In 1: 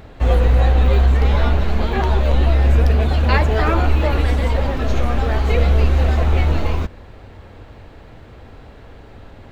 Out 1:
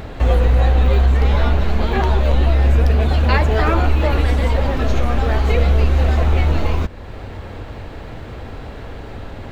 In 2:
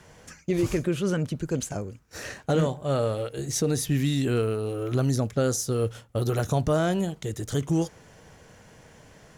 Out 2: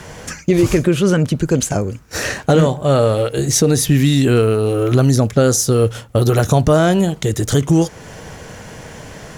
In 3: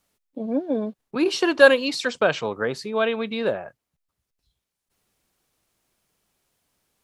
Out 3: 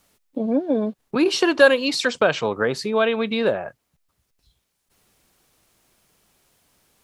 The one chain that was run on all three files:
compression 1.5:1, threshold -37 dBFS; peak normalisation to -2 dBFS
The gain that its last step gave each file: +9.5 dB, +17.0 dB, +9.5 dB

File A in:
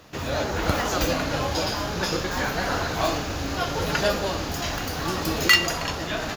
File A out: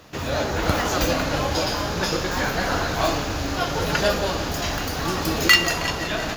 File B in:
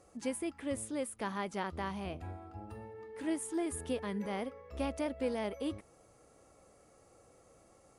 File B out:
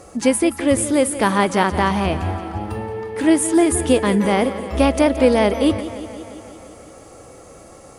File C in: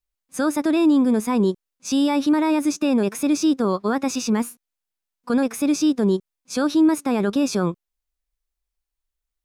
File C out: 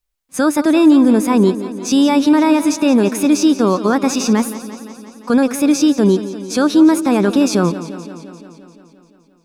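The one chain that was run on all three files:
modulated delay 173 ms, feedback 69%, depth 58 cents, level -14 dB; peak normalisation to -1.5 dBFS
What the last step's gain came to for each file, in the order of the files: +2.0 dB, +20.0 dB, +6.5 dB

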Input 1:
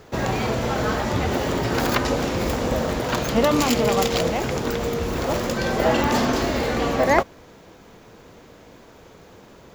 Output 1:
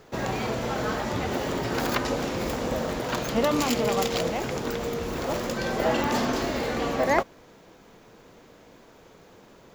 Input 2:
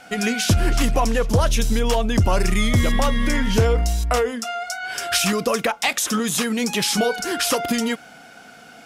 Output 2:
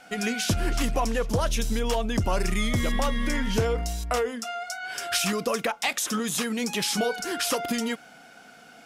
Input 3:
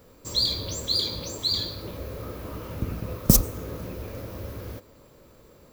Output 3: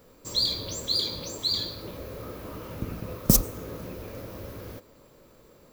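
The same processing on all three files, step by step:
peaking EQ 73 Hz -6 dB 1.2 oct; normalise loudness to -27 LUFS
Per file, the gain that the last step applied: -4.5 dB, -5.5 dB, -1.5 dB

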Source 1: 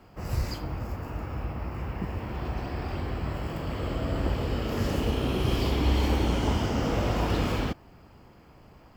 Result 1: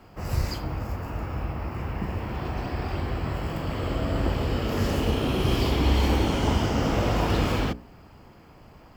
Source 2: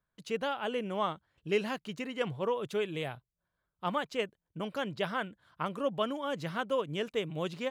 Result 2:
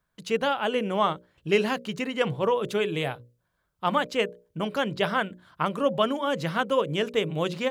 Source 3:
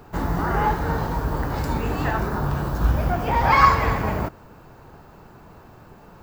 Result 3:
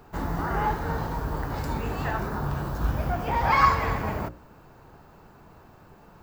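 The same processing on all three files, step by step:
hum notches 60/120/180/240/300/360/420/480/540/600 Hz; normalise loudness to -27 LUFS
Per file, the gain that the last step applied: +3.5 dB, +8.5 dB, -4.5 dB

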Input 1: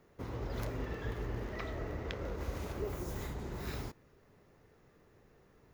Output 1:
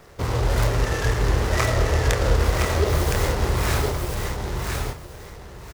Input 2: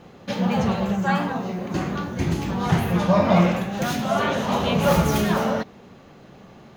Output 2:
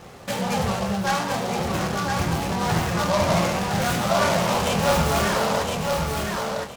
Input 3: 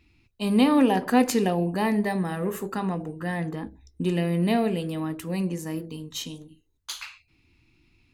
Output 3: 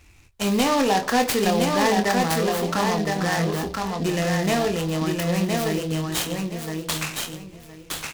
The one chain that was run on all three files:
peaking EQ 250 Hz -9.5 dB 1.4 oct; in parallel at -1.5 dB: compression, threshold -34 dBFS; on the sum: saturation -16.5 dBFS; doubling 25 ms -7 dB; on a send: feedback delay 1015 ms, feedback 21%, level -3.5 dB; on the sum: delay time shaken by noise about 3.6 kHz, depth 0.047 ms; normalise loudness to -23 LUFS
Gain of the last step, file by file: +13.5 dB, +0.5 dB, +4.5 dB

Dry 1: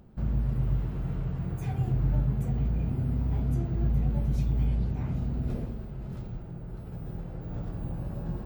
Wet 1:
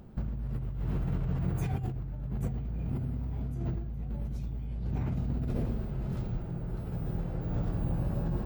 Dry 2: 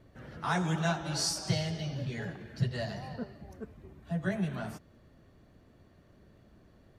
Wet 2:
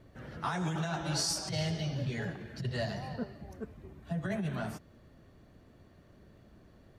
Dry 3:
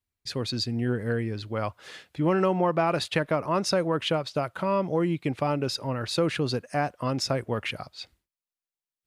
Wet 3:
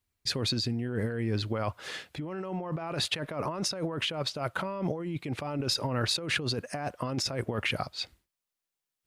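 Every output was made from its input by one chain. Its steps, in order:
compressor with a negative ratio -32 dBFS, ratio -1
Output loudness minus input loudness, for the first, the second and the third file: -3.5 LU, -1.5 LU, -4.5 LU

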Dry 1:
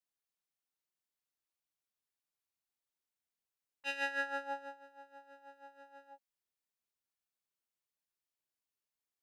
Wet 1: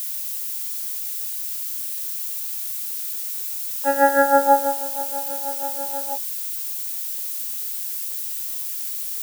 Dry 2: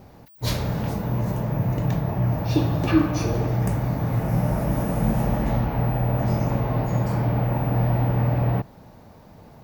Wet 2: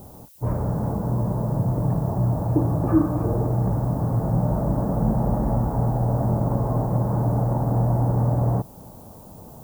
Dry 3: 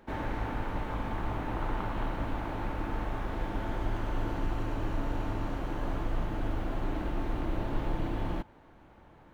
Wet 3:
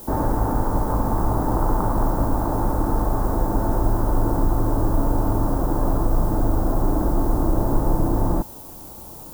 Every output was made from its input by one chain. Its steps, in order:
inverse Chebyshev low-pass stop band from 3.9 kHz, stop band 60 dB; in parallel at -2.5 dB: compression, threshold -30 dBFS; on the sum: added noise violet -50 dBFS; normalise loudness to -23 LUFS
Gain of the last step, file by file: +21.5 dB, -1.0 dB, +9.0 dB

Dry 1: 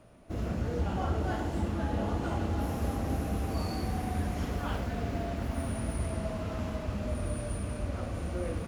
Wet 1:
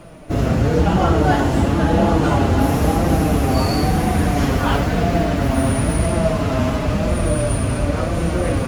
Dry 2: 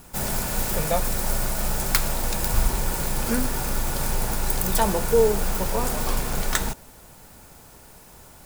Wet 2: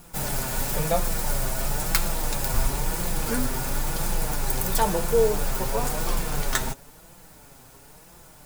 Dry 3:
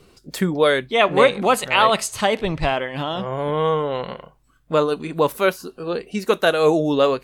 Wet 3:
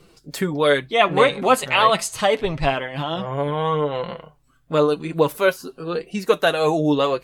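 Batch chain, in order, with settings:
flange 0.98 Hz, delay 5.7 ms, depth 2.1 ms, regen +32%; peak normalisation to -3 dBFS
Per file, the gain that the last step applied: +20.5 dB, +2.0 dB, +3.5 dB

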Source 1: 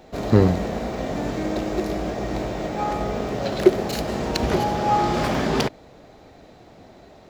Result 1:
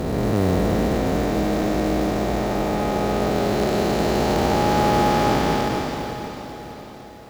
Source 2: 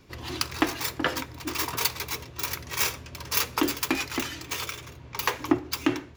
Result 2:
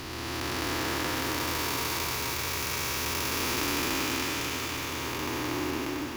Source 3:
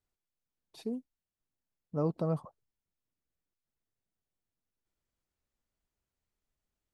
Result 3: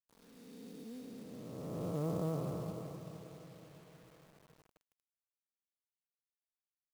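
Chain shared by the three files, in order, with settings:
spectral blur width 844 ms; Chebyshev shaper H 3 -32 dB, 6 -29 dB, 7 -41 dB, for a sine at -12.5 dBFS; on a send: echo that smears into a reverb 473 ms, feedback 49%, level -10 dB; on the sum: companded quantiser 6-bit; trim +6 dB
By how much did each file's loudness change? +2.0 LU, -1.0 LU, -6.0 LU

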